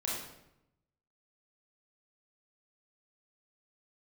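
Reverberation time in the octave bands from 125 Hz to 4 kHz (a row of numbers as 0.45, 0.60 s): 1.2, 1.0, 0.90, 0.80, 0.75, 0.65 s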